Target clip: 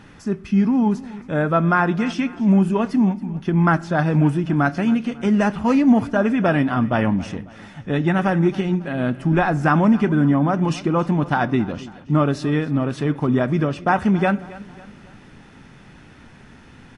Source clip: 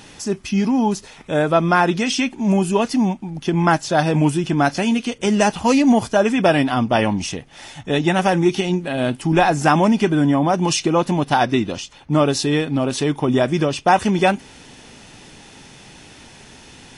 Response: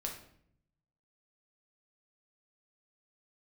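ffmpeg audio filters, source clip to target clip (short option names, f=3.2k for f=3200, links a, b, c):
-filter_complex "[0:a]firequalizer=gain_entry='entry(230,0);entry(350,-5);entry(850,-7);entry(1300,0);entry(2800,-11);entry(4000,-14);entry(6700,-18)':delay=0.05:min_phase=1,aecho=1:1:273|546|819:0.112|0.0494|0.0217,asplit=2[a][b];[1:a]atrim=start_sample=2205[c];[b][c]afir=irnorm=-1:irlink=0,volume=-13.5dB[d];[a][d]amix=inputs=2:normalize=0"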